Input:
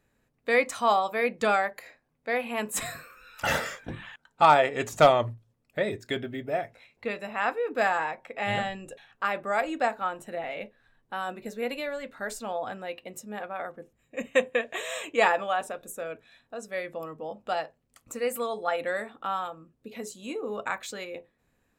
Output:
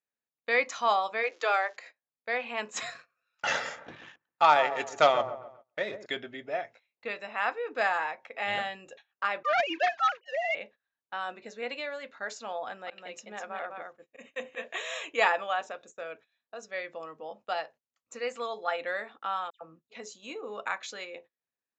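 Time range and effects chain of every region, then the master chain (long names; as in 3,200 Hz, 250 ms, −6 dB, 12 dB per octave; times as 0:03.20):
0:01.22–0:01.75: Butterworth high-pass 280 Hz 96 dB per octave + high-shelf EQ 9,500 Hz −9.5 dB + surface crackle 400 per second −45 dBFS
0:02.90–0:06.06: mu-law and A-law mismatch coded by A + delay with a low-pass on its return 134 ms, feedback 37%, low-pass 1,200 Hz, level −9.5 dB
0:09.43–0:10.55: three sine waves on the formant tracks + spectral tilt +4.5 dB per octave + leveller curve on the samples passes 2
0:12.66–0:14.68: single-tap delay 205 ms −4.5 dB + volume swells 109 ms
0:19.50–0:19.90: low-shelf EQ 280 Hz +9.5 dB + all-pass dispersion lows, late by 112 ms, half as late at 2,700 Hz + multiband upward and downward expander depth 40%
whole clip: Butterworth low-pass 7,100 Hz 96 dB per octave; noise gate −47 dBFS, range −21 dB; high-pass filter 760 Hz 6 dB per octave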